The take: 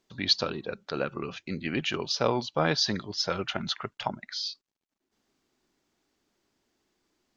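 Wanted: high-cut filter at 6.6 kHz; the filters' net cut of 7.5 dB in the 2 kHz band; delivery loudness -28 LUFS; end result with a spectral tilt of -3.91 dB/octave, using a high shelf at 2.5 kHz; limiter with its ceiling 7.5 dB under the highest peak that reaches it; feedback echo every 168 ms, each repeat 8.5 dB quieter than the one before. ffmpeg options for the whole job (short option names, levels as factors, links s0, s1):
-af "lowpass=6600,equalizer=f=2000:t=o:g=-7.5,highshelf=f=2500:g=-5.5,alimiter=limit=0.106:level=0:latency=1,aecho=1:1:168|336|504|672:0.376|0.143|0.0543|0.0206,volume=2"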